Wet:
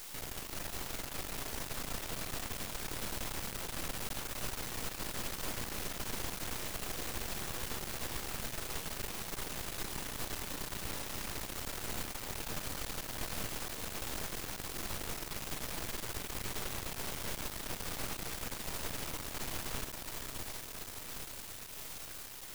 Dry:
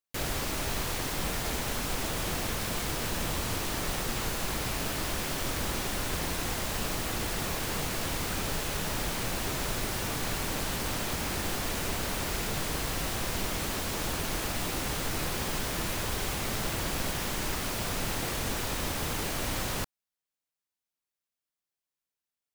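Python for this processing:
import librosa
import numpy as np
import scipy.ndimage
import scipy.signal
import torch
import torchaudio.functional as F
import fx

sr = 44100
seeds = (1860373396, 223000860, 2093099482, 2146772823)

y = fx.echo_diffused(x, sr, ms=461, feedback_pct=76, wet_db=-4)
y = fx.quant_dither(y, sr, seeds[0], bits=6, dither='triangular')
y = np.maximum(y, 0.0)
y = F.gain(torch.from_numpy(y), -8.0).numpy()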